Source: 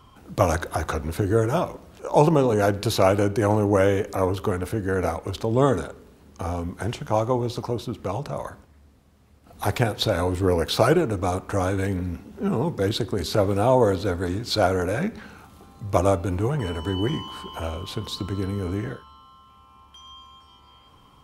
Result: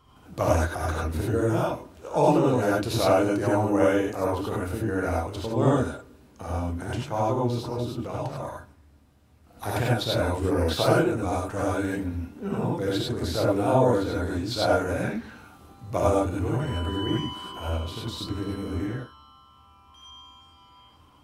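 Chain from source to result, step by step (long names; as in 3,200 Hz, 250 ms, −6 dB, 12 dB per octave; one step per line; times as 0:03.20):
reverb whose tail is shaped and stops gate 120 ms rising, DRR −4.5 dB
level −8 dB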